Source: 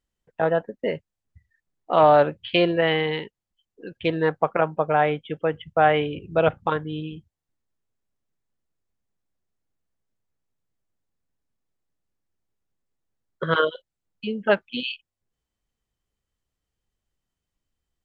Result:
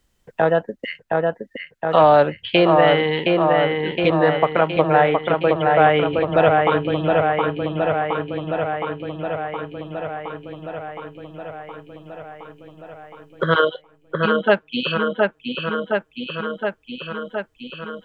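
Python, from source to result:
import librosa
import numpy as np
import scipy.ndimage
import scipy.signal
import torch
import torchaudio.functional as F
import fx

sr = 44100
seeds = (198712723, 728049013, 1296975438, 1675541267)

y = fx.ellip_highpass(x, sr, hz=1400.0, order=4, stop_db=40, at=(0.83, 1.93), fade=0.02)
y = fx.echo_wet_lowpass(y, sr, ms=717, feedback_pct=63, hz=3000.0, wet_db=-4.0)
y = fx.band_squash(y, sr, depth_pct=40)
y = F.gain(torch.from_numpy(y), 4.5).numpy()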